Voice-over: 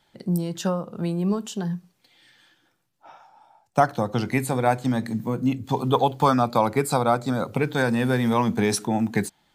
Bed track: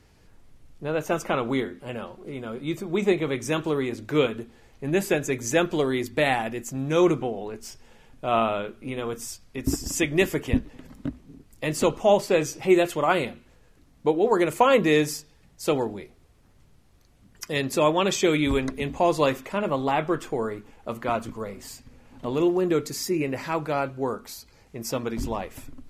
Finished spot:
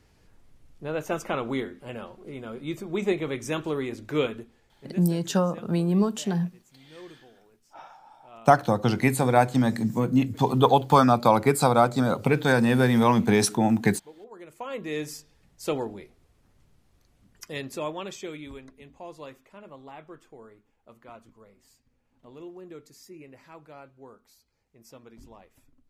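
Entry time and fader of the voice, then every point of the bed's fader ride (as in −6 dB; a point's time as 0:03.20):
4.70 s, +1.5 dB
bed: 0:04.33 −3.5 dB
0:05.28 −26 dB
0:14.30 −26 dB
0:15.25 −4.5 dB
0:17.25 −4.5 dB
0:18.69 −20.5 dB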